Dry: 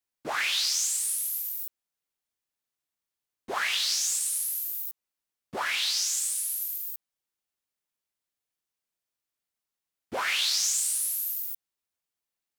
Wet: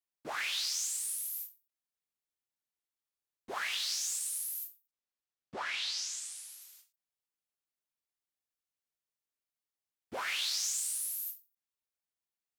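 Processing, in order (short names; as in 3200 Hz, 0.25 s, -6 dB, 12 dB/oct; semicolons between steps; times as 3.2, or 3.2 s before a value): 4.87–6.94 LPF 6500 Hz 12 dB/oct; ending taper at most 210 dB/s; gain -7.5 dB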